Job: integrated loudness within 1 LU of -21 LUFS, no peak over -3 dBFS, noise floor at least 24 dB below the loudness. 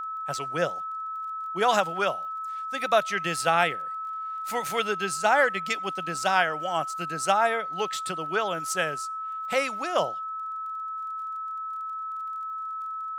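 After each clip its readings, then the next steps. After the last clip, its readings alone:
ticks 26/s; steady tone 1300 Hz; tone level -31 dBFS; loudness -27.5 LUFS; peak -8.0 dBFS; loudness target -21.0 LUFS
-> de-click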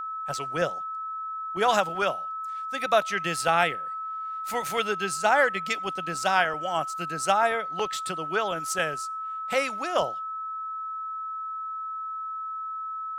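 ticks 0.15/s; steady tone 1300 Hz; tone level -31 dBFS
-> notch 1300 Hz, Q 30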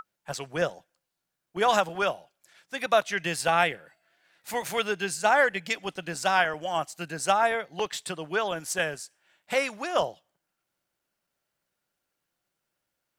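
steady tone none; loudness -27.0 LUFS; peak -8.0 dBFS; loudness target -21.0 LUFS
-> gain +6 dB; limiter -3 dBFS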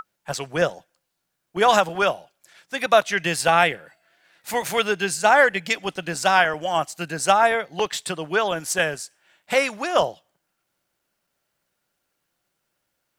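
loudness -21.5 LUFS; peak -3.0 dBFS; noise floor -77 dBFS

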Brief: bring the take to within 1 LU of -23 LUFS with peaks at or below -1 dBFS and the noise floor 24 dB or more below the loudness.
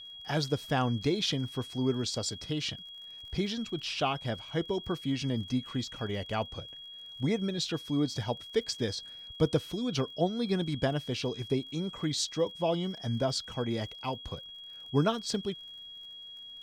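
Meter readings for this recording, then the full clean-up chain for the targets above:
ticks 37/s; steady tone 3300 Hz; tone level -44 dBFS; loudness -32.5 LUFS; peak -13.5 dBFS; loudness target -23.0 LUFS
-> de-click; notch 3300 Hz, Q 30; gain +9.5 dB

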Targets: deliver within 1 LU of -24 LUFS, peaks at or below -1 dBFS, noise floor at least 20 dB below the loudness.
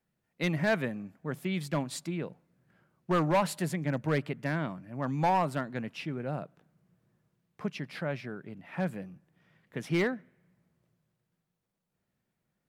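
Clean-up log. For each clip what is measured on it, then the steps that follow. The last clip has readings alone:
clipped 0.5%; flat tops at -20.5 dBFS; loudness -32.5 LUFS; peak -20.5 dBFS; loudness target -24.0 LUFS
-> clip repair -20.5 dBFS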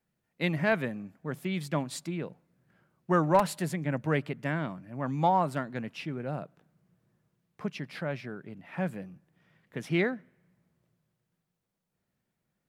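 clipped 0.0%; loudness -31.5 LUFS; peak -11.5 dBFS; loudness target -24.0 LUFS
-> gain +7.5 dB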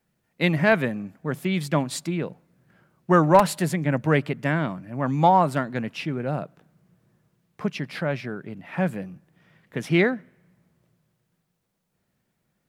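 loudness -24.0 LUFS; peak -4.0 dBFS; noise floor -76 dBFS

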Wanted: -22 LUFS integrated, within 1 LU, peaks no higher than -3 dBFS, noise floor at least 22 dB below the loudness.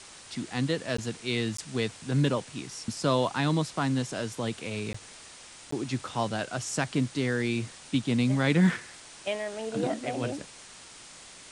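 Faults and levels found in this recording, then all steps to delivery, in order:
dropouts 4; longest dropout 14 ms; noise floor -49 dBFS; noise floor target -52 dBFS; loudness -30.0 LUFS; peak -12.5 dBFS; loudness target -22.0 LUFS
-> interpolate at 0.97/1.57/4.93/5.71, 14 ms; denoiser 6 dB, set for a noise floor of -49 dBFS; gain +8 dB

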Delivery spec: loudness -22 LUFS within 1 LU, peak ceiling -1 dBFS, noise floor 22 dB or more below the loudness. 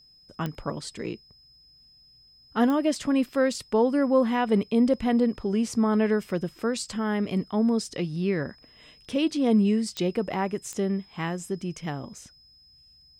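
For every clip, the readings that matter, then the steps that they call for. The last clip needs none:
clicks 4; steady tone 5100 Hz; tone level -54 dBFS; loudness -26.0 LUFS; peak -10.5 dBFS; loudness target -22.0 LUFS
-> de-click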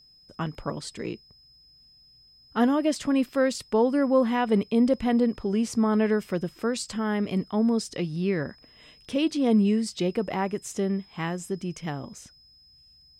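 clicks 0; steady tone 5100 Hz; tone level -54 dBFS
-> notch 5100 Hz, Q 30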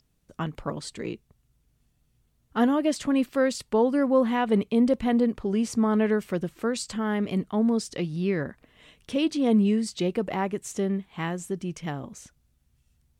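steady tone none; loudness -26.0 LUFS; peak -10.5 dBFS; loudness target -22.0 LUFS
-> gain +4 dB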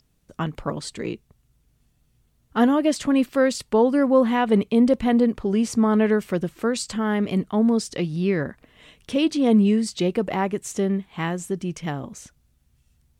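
loudness -22.0 LUFS; peak -6.5 dBFS; noise floor -65 dBFS

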